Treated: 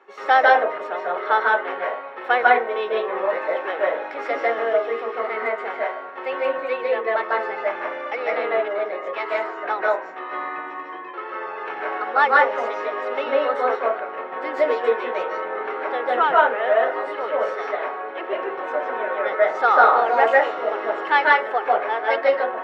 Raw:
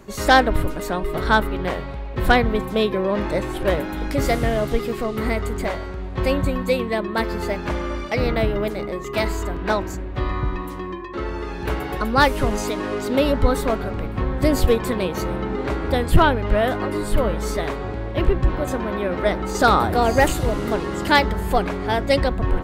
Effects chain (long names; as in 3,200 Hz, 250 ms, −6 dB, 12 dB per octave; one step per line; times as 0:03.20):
Chebyshev high-pass filter 530 Hz, order 3
high-frequency loss of the air 210 metres
convolution reverb RT60 0.35 s, pre-delay 143 ms, DRR −3 dB
level −7 dB